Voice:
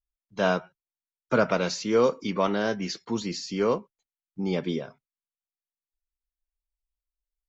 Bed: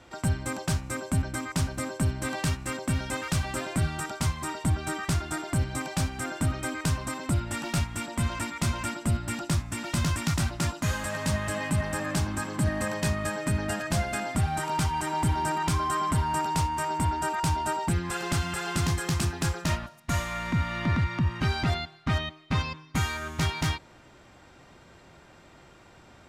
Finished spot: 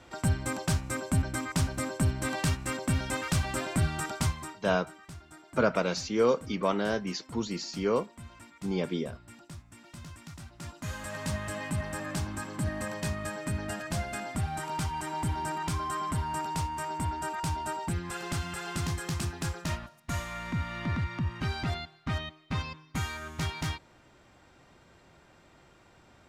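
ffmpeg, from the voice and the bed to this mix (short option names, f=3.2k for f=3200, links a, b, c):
-filter_complex "[0:a]adelay=4250,volume=-3dB[a];[1:a]volume=13dB,afade=t=out:st=4.22:d=0.38:silence=0.11885,afade=t=in:st=10.51:d=0.68:silence=0.211349[b];[a][b]amix=inputs=2:normalize=0"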